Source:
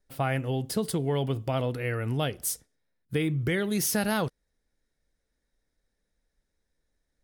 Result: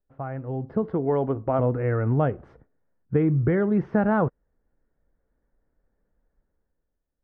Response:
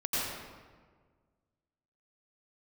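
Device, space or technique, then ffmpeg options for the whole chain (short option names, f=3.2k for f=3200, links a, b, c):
action camera in a waterproof case: -filter_complex "[0:a]asettb=1/sr,asplit=3[a][b][c];[a]atrim=end=0.824[d];[b]atrim=start=0.82:end=1.59,asetpts=PTS-STARTPTS,afade=t=in:d=0.004:c=qsin,afade=t=out:st=0.766:d=0.004:c=qsin,equalizer=f=130:w=1.5:g=-8.5[e];[c]atrim=start=1.586[f];[d][e]acrossfade=d=0.004:c1=hsin:c2=qsin[g];[g][f]acrossfade=d=0.004:c1=qsin:c2=hsin,lowpass=f=1.4k:w=0.5412,lowpass=f=1.4k:w=1.3066,dynaudnorm=f=110:g=13:m=12.5dB,volume=-5.5dB" -ar 32000 -c:a aac -b:a 96k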